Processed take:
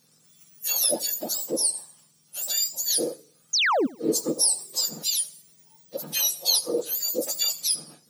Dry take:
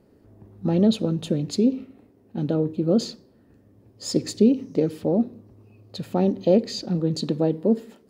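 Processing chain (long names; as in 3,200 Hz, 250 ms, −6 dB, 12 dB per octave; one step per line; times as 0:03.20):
frequency axis turned over on the octave scale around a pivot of 1,500 Hz
sound drawn into the spectrogram fall, 0:03.53–0:03.87, 220–7,000 Hz −24 dBFS
feedback echo with a swinging delay time 82 ms, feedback 34%, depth 123 cents, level −21.5 dB
level +2.5 dB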